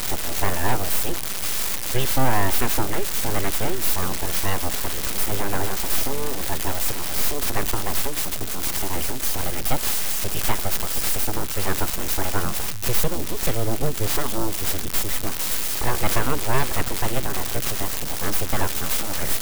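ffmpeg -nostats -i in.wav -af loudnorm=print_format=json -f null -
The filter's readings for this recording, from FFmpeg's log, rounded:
"input_i" : "-24.3",
"input_tp" : "-6.2",
"input_lra" : "1.4",
"input_thresh" : "-34.3",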